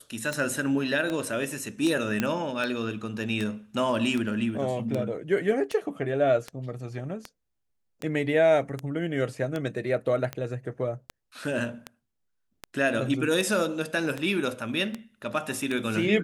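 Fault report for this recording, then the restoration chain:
tick 78 rpm -17 dBFS
2.2 pop -11 dBFS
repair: de-click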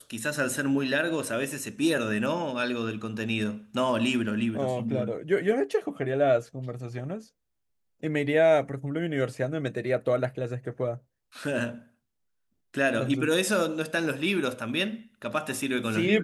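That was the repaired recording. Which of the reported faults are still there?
none

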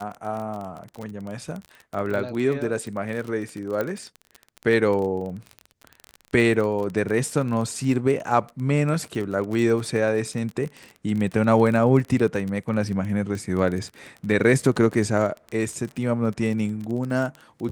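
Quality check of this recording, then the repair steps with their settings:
crackle 28/s -28 dBFS
3.81 pop -14 dBFS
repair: de-click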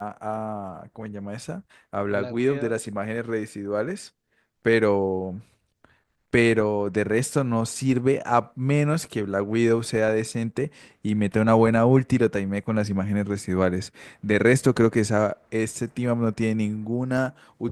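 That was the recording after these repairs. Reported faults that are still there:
none

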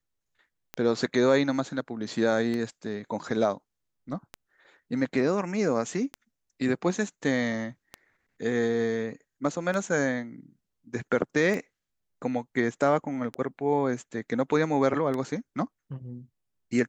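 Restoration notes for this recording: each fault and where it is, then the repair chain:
tick 33 1/3 rpm -19 dBFS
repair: de-click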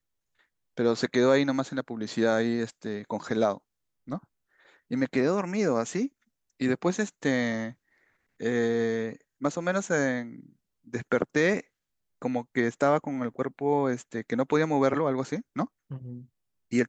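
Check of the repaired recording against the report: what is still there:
none

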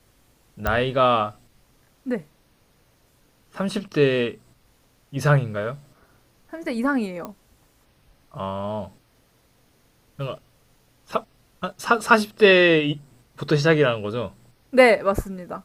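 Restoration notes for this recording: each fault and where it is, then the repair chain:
0.67 pop -10 dBFS
7.25 pop -19 dBFS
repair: de-click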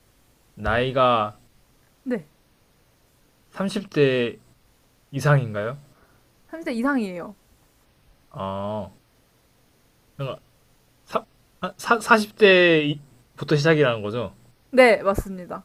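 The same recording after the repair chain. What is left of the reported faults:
none

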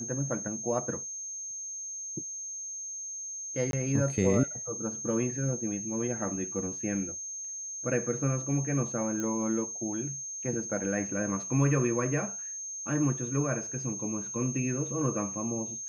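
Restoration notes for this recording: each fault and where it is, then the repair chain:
tone 6400 Hz -36 dBFS
3.71–3.73 gap 22 ms
9.2 pop -21 dBFS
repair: de-click; notch 6400 Hz, Q 30; interpolate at 3.71, 22 ms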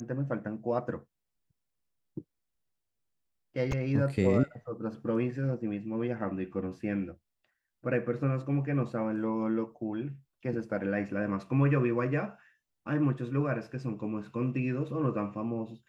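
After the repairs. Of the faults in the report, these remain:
none

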